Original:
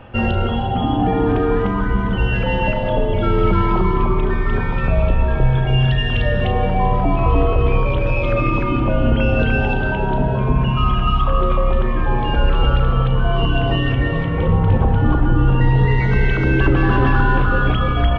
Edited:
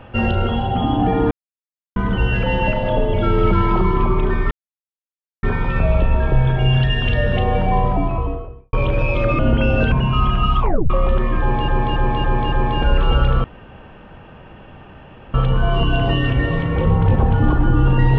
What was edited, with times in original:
1.31–1.96 mute
4.51 insert silence 0.92 s
6.79–7.81 studio fade out
8.47–8.98 cut
9.51–10.56 cut
11.24 tape stop 0.30 s
12.04–12.32 loop, 5 plays
12.96 insert room tone 1.90 s

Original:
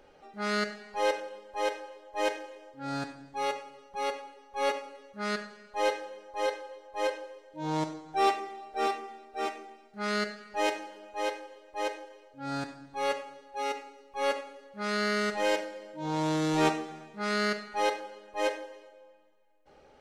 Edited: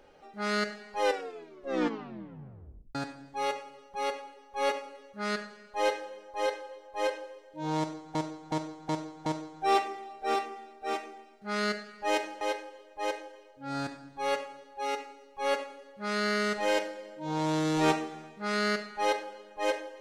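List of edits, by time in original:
1.02 tape stop 1.93 s
7.78–8.15 loop, 5 plays
10.93–11.18 cut

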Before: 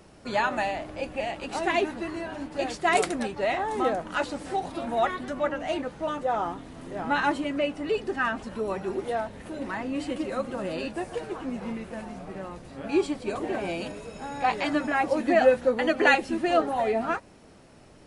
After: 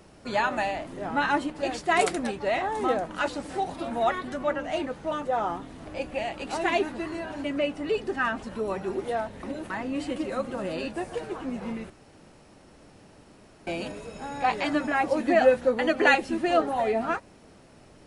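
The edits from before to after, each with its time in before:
0.87–2.46 swap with 6.81–7.44
9.43–9.7 reverse
11.9–13.67 room tone

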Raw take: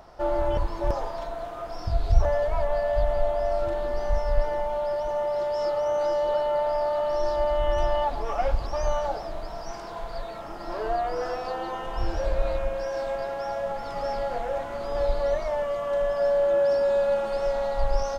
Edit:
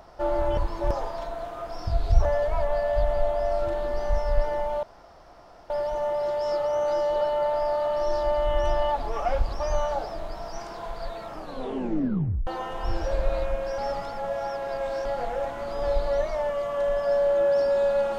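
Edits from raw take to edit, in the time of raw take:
4.83 insert room tone 0.87 s
10.46 tape stop 1.14 s
12.91–14.18 reverse

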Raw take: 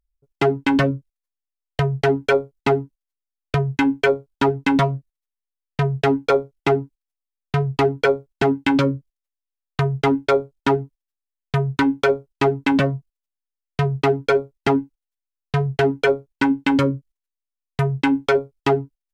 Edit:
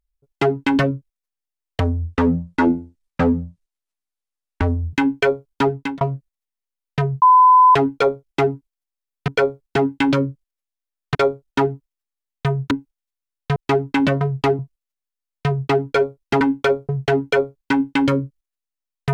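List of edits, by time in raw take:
1.8–3.74 speed 62%
4.53–4.82 fade out
6.03 add tone 1010 Hz -7 dBFS 0.53 s
7.56–7.94 move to 12.93
9.81–10.24 cut
11.8–12.28 swap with 14.75–15.6

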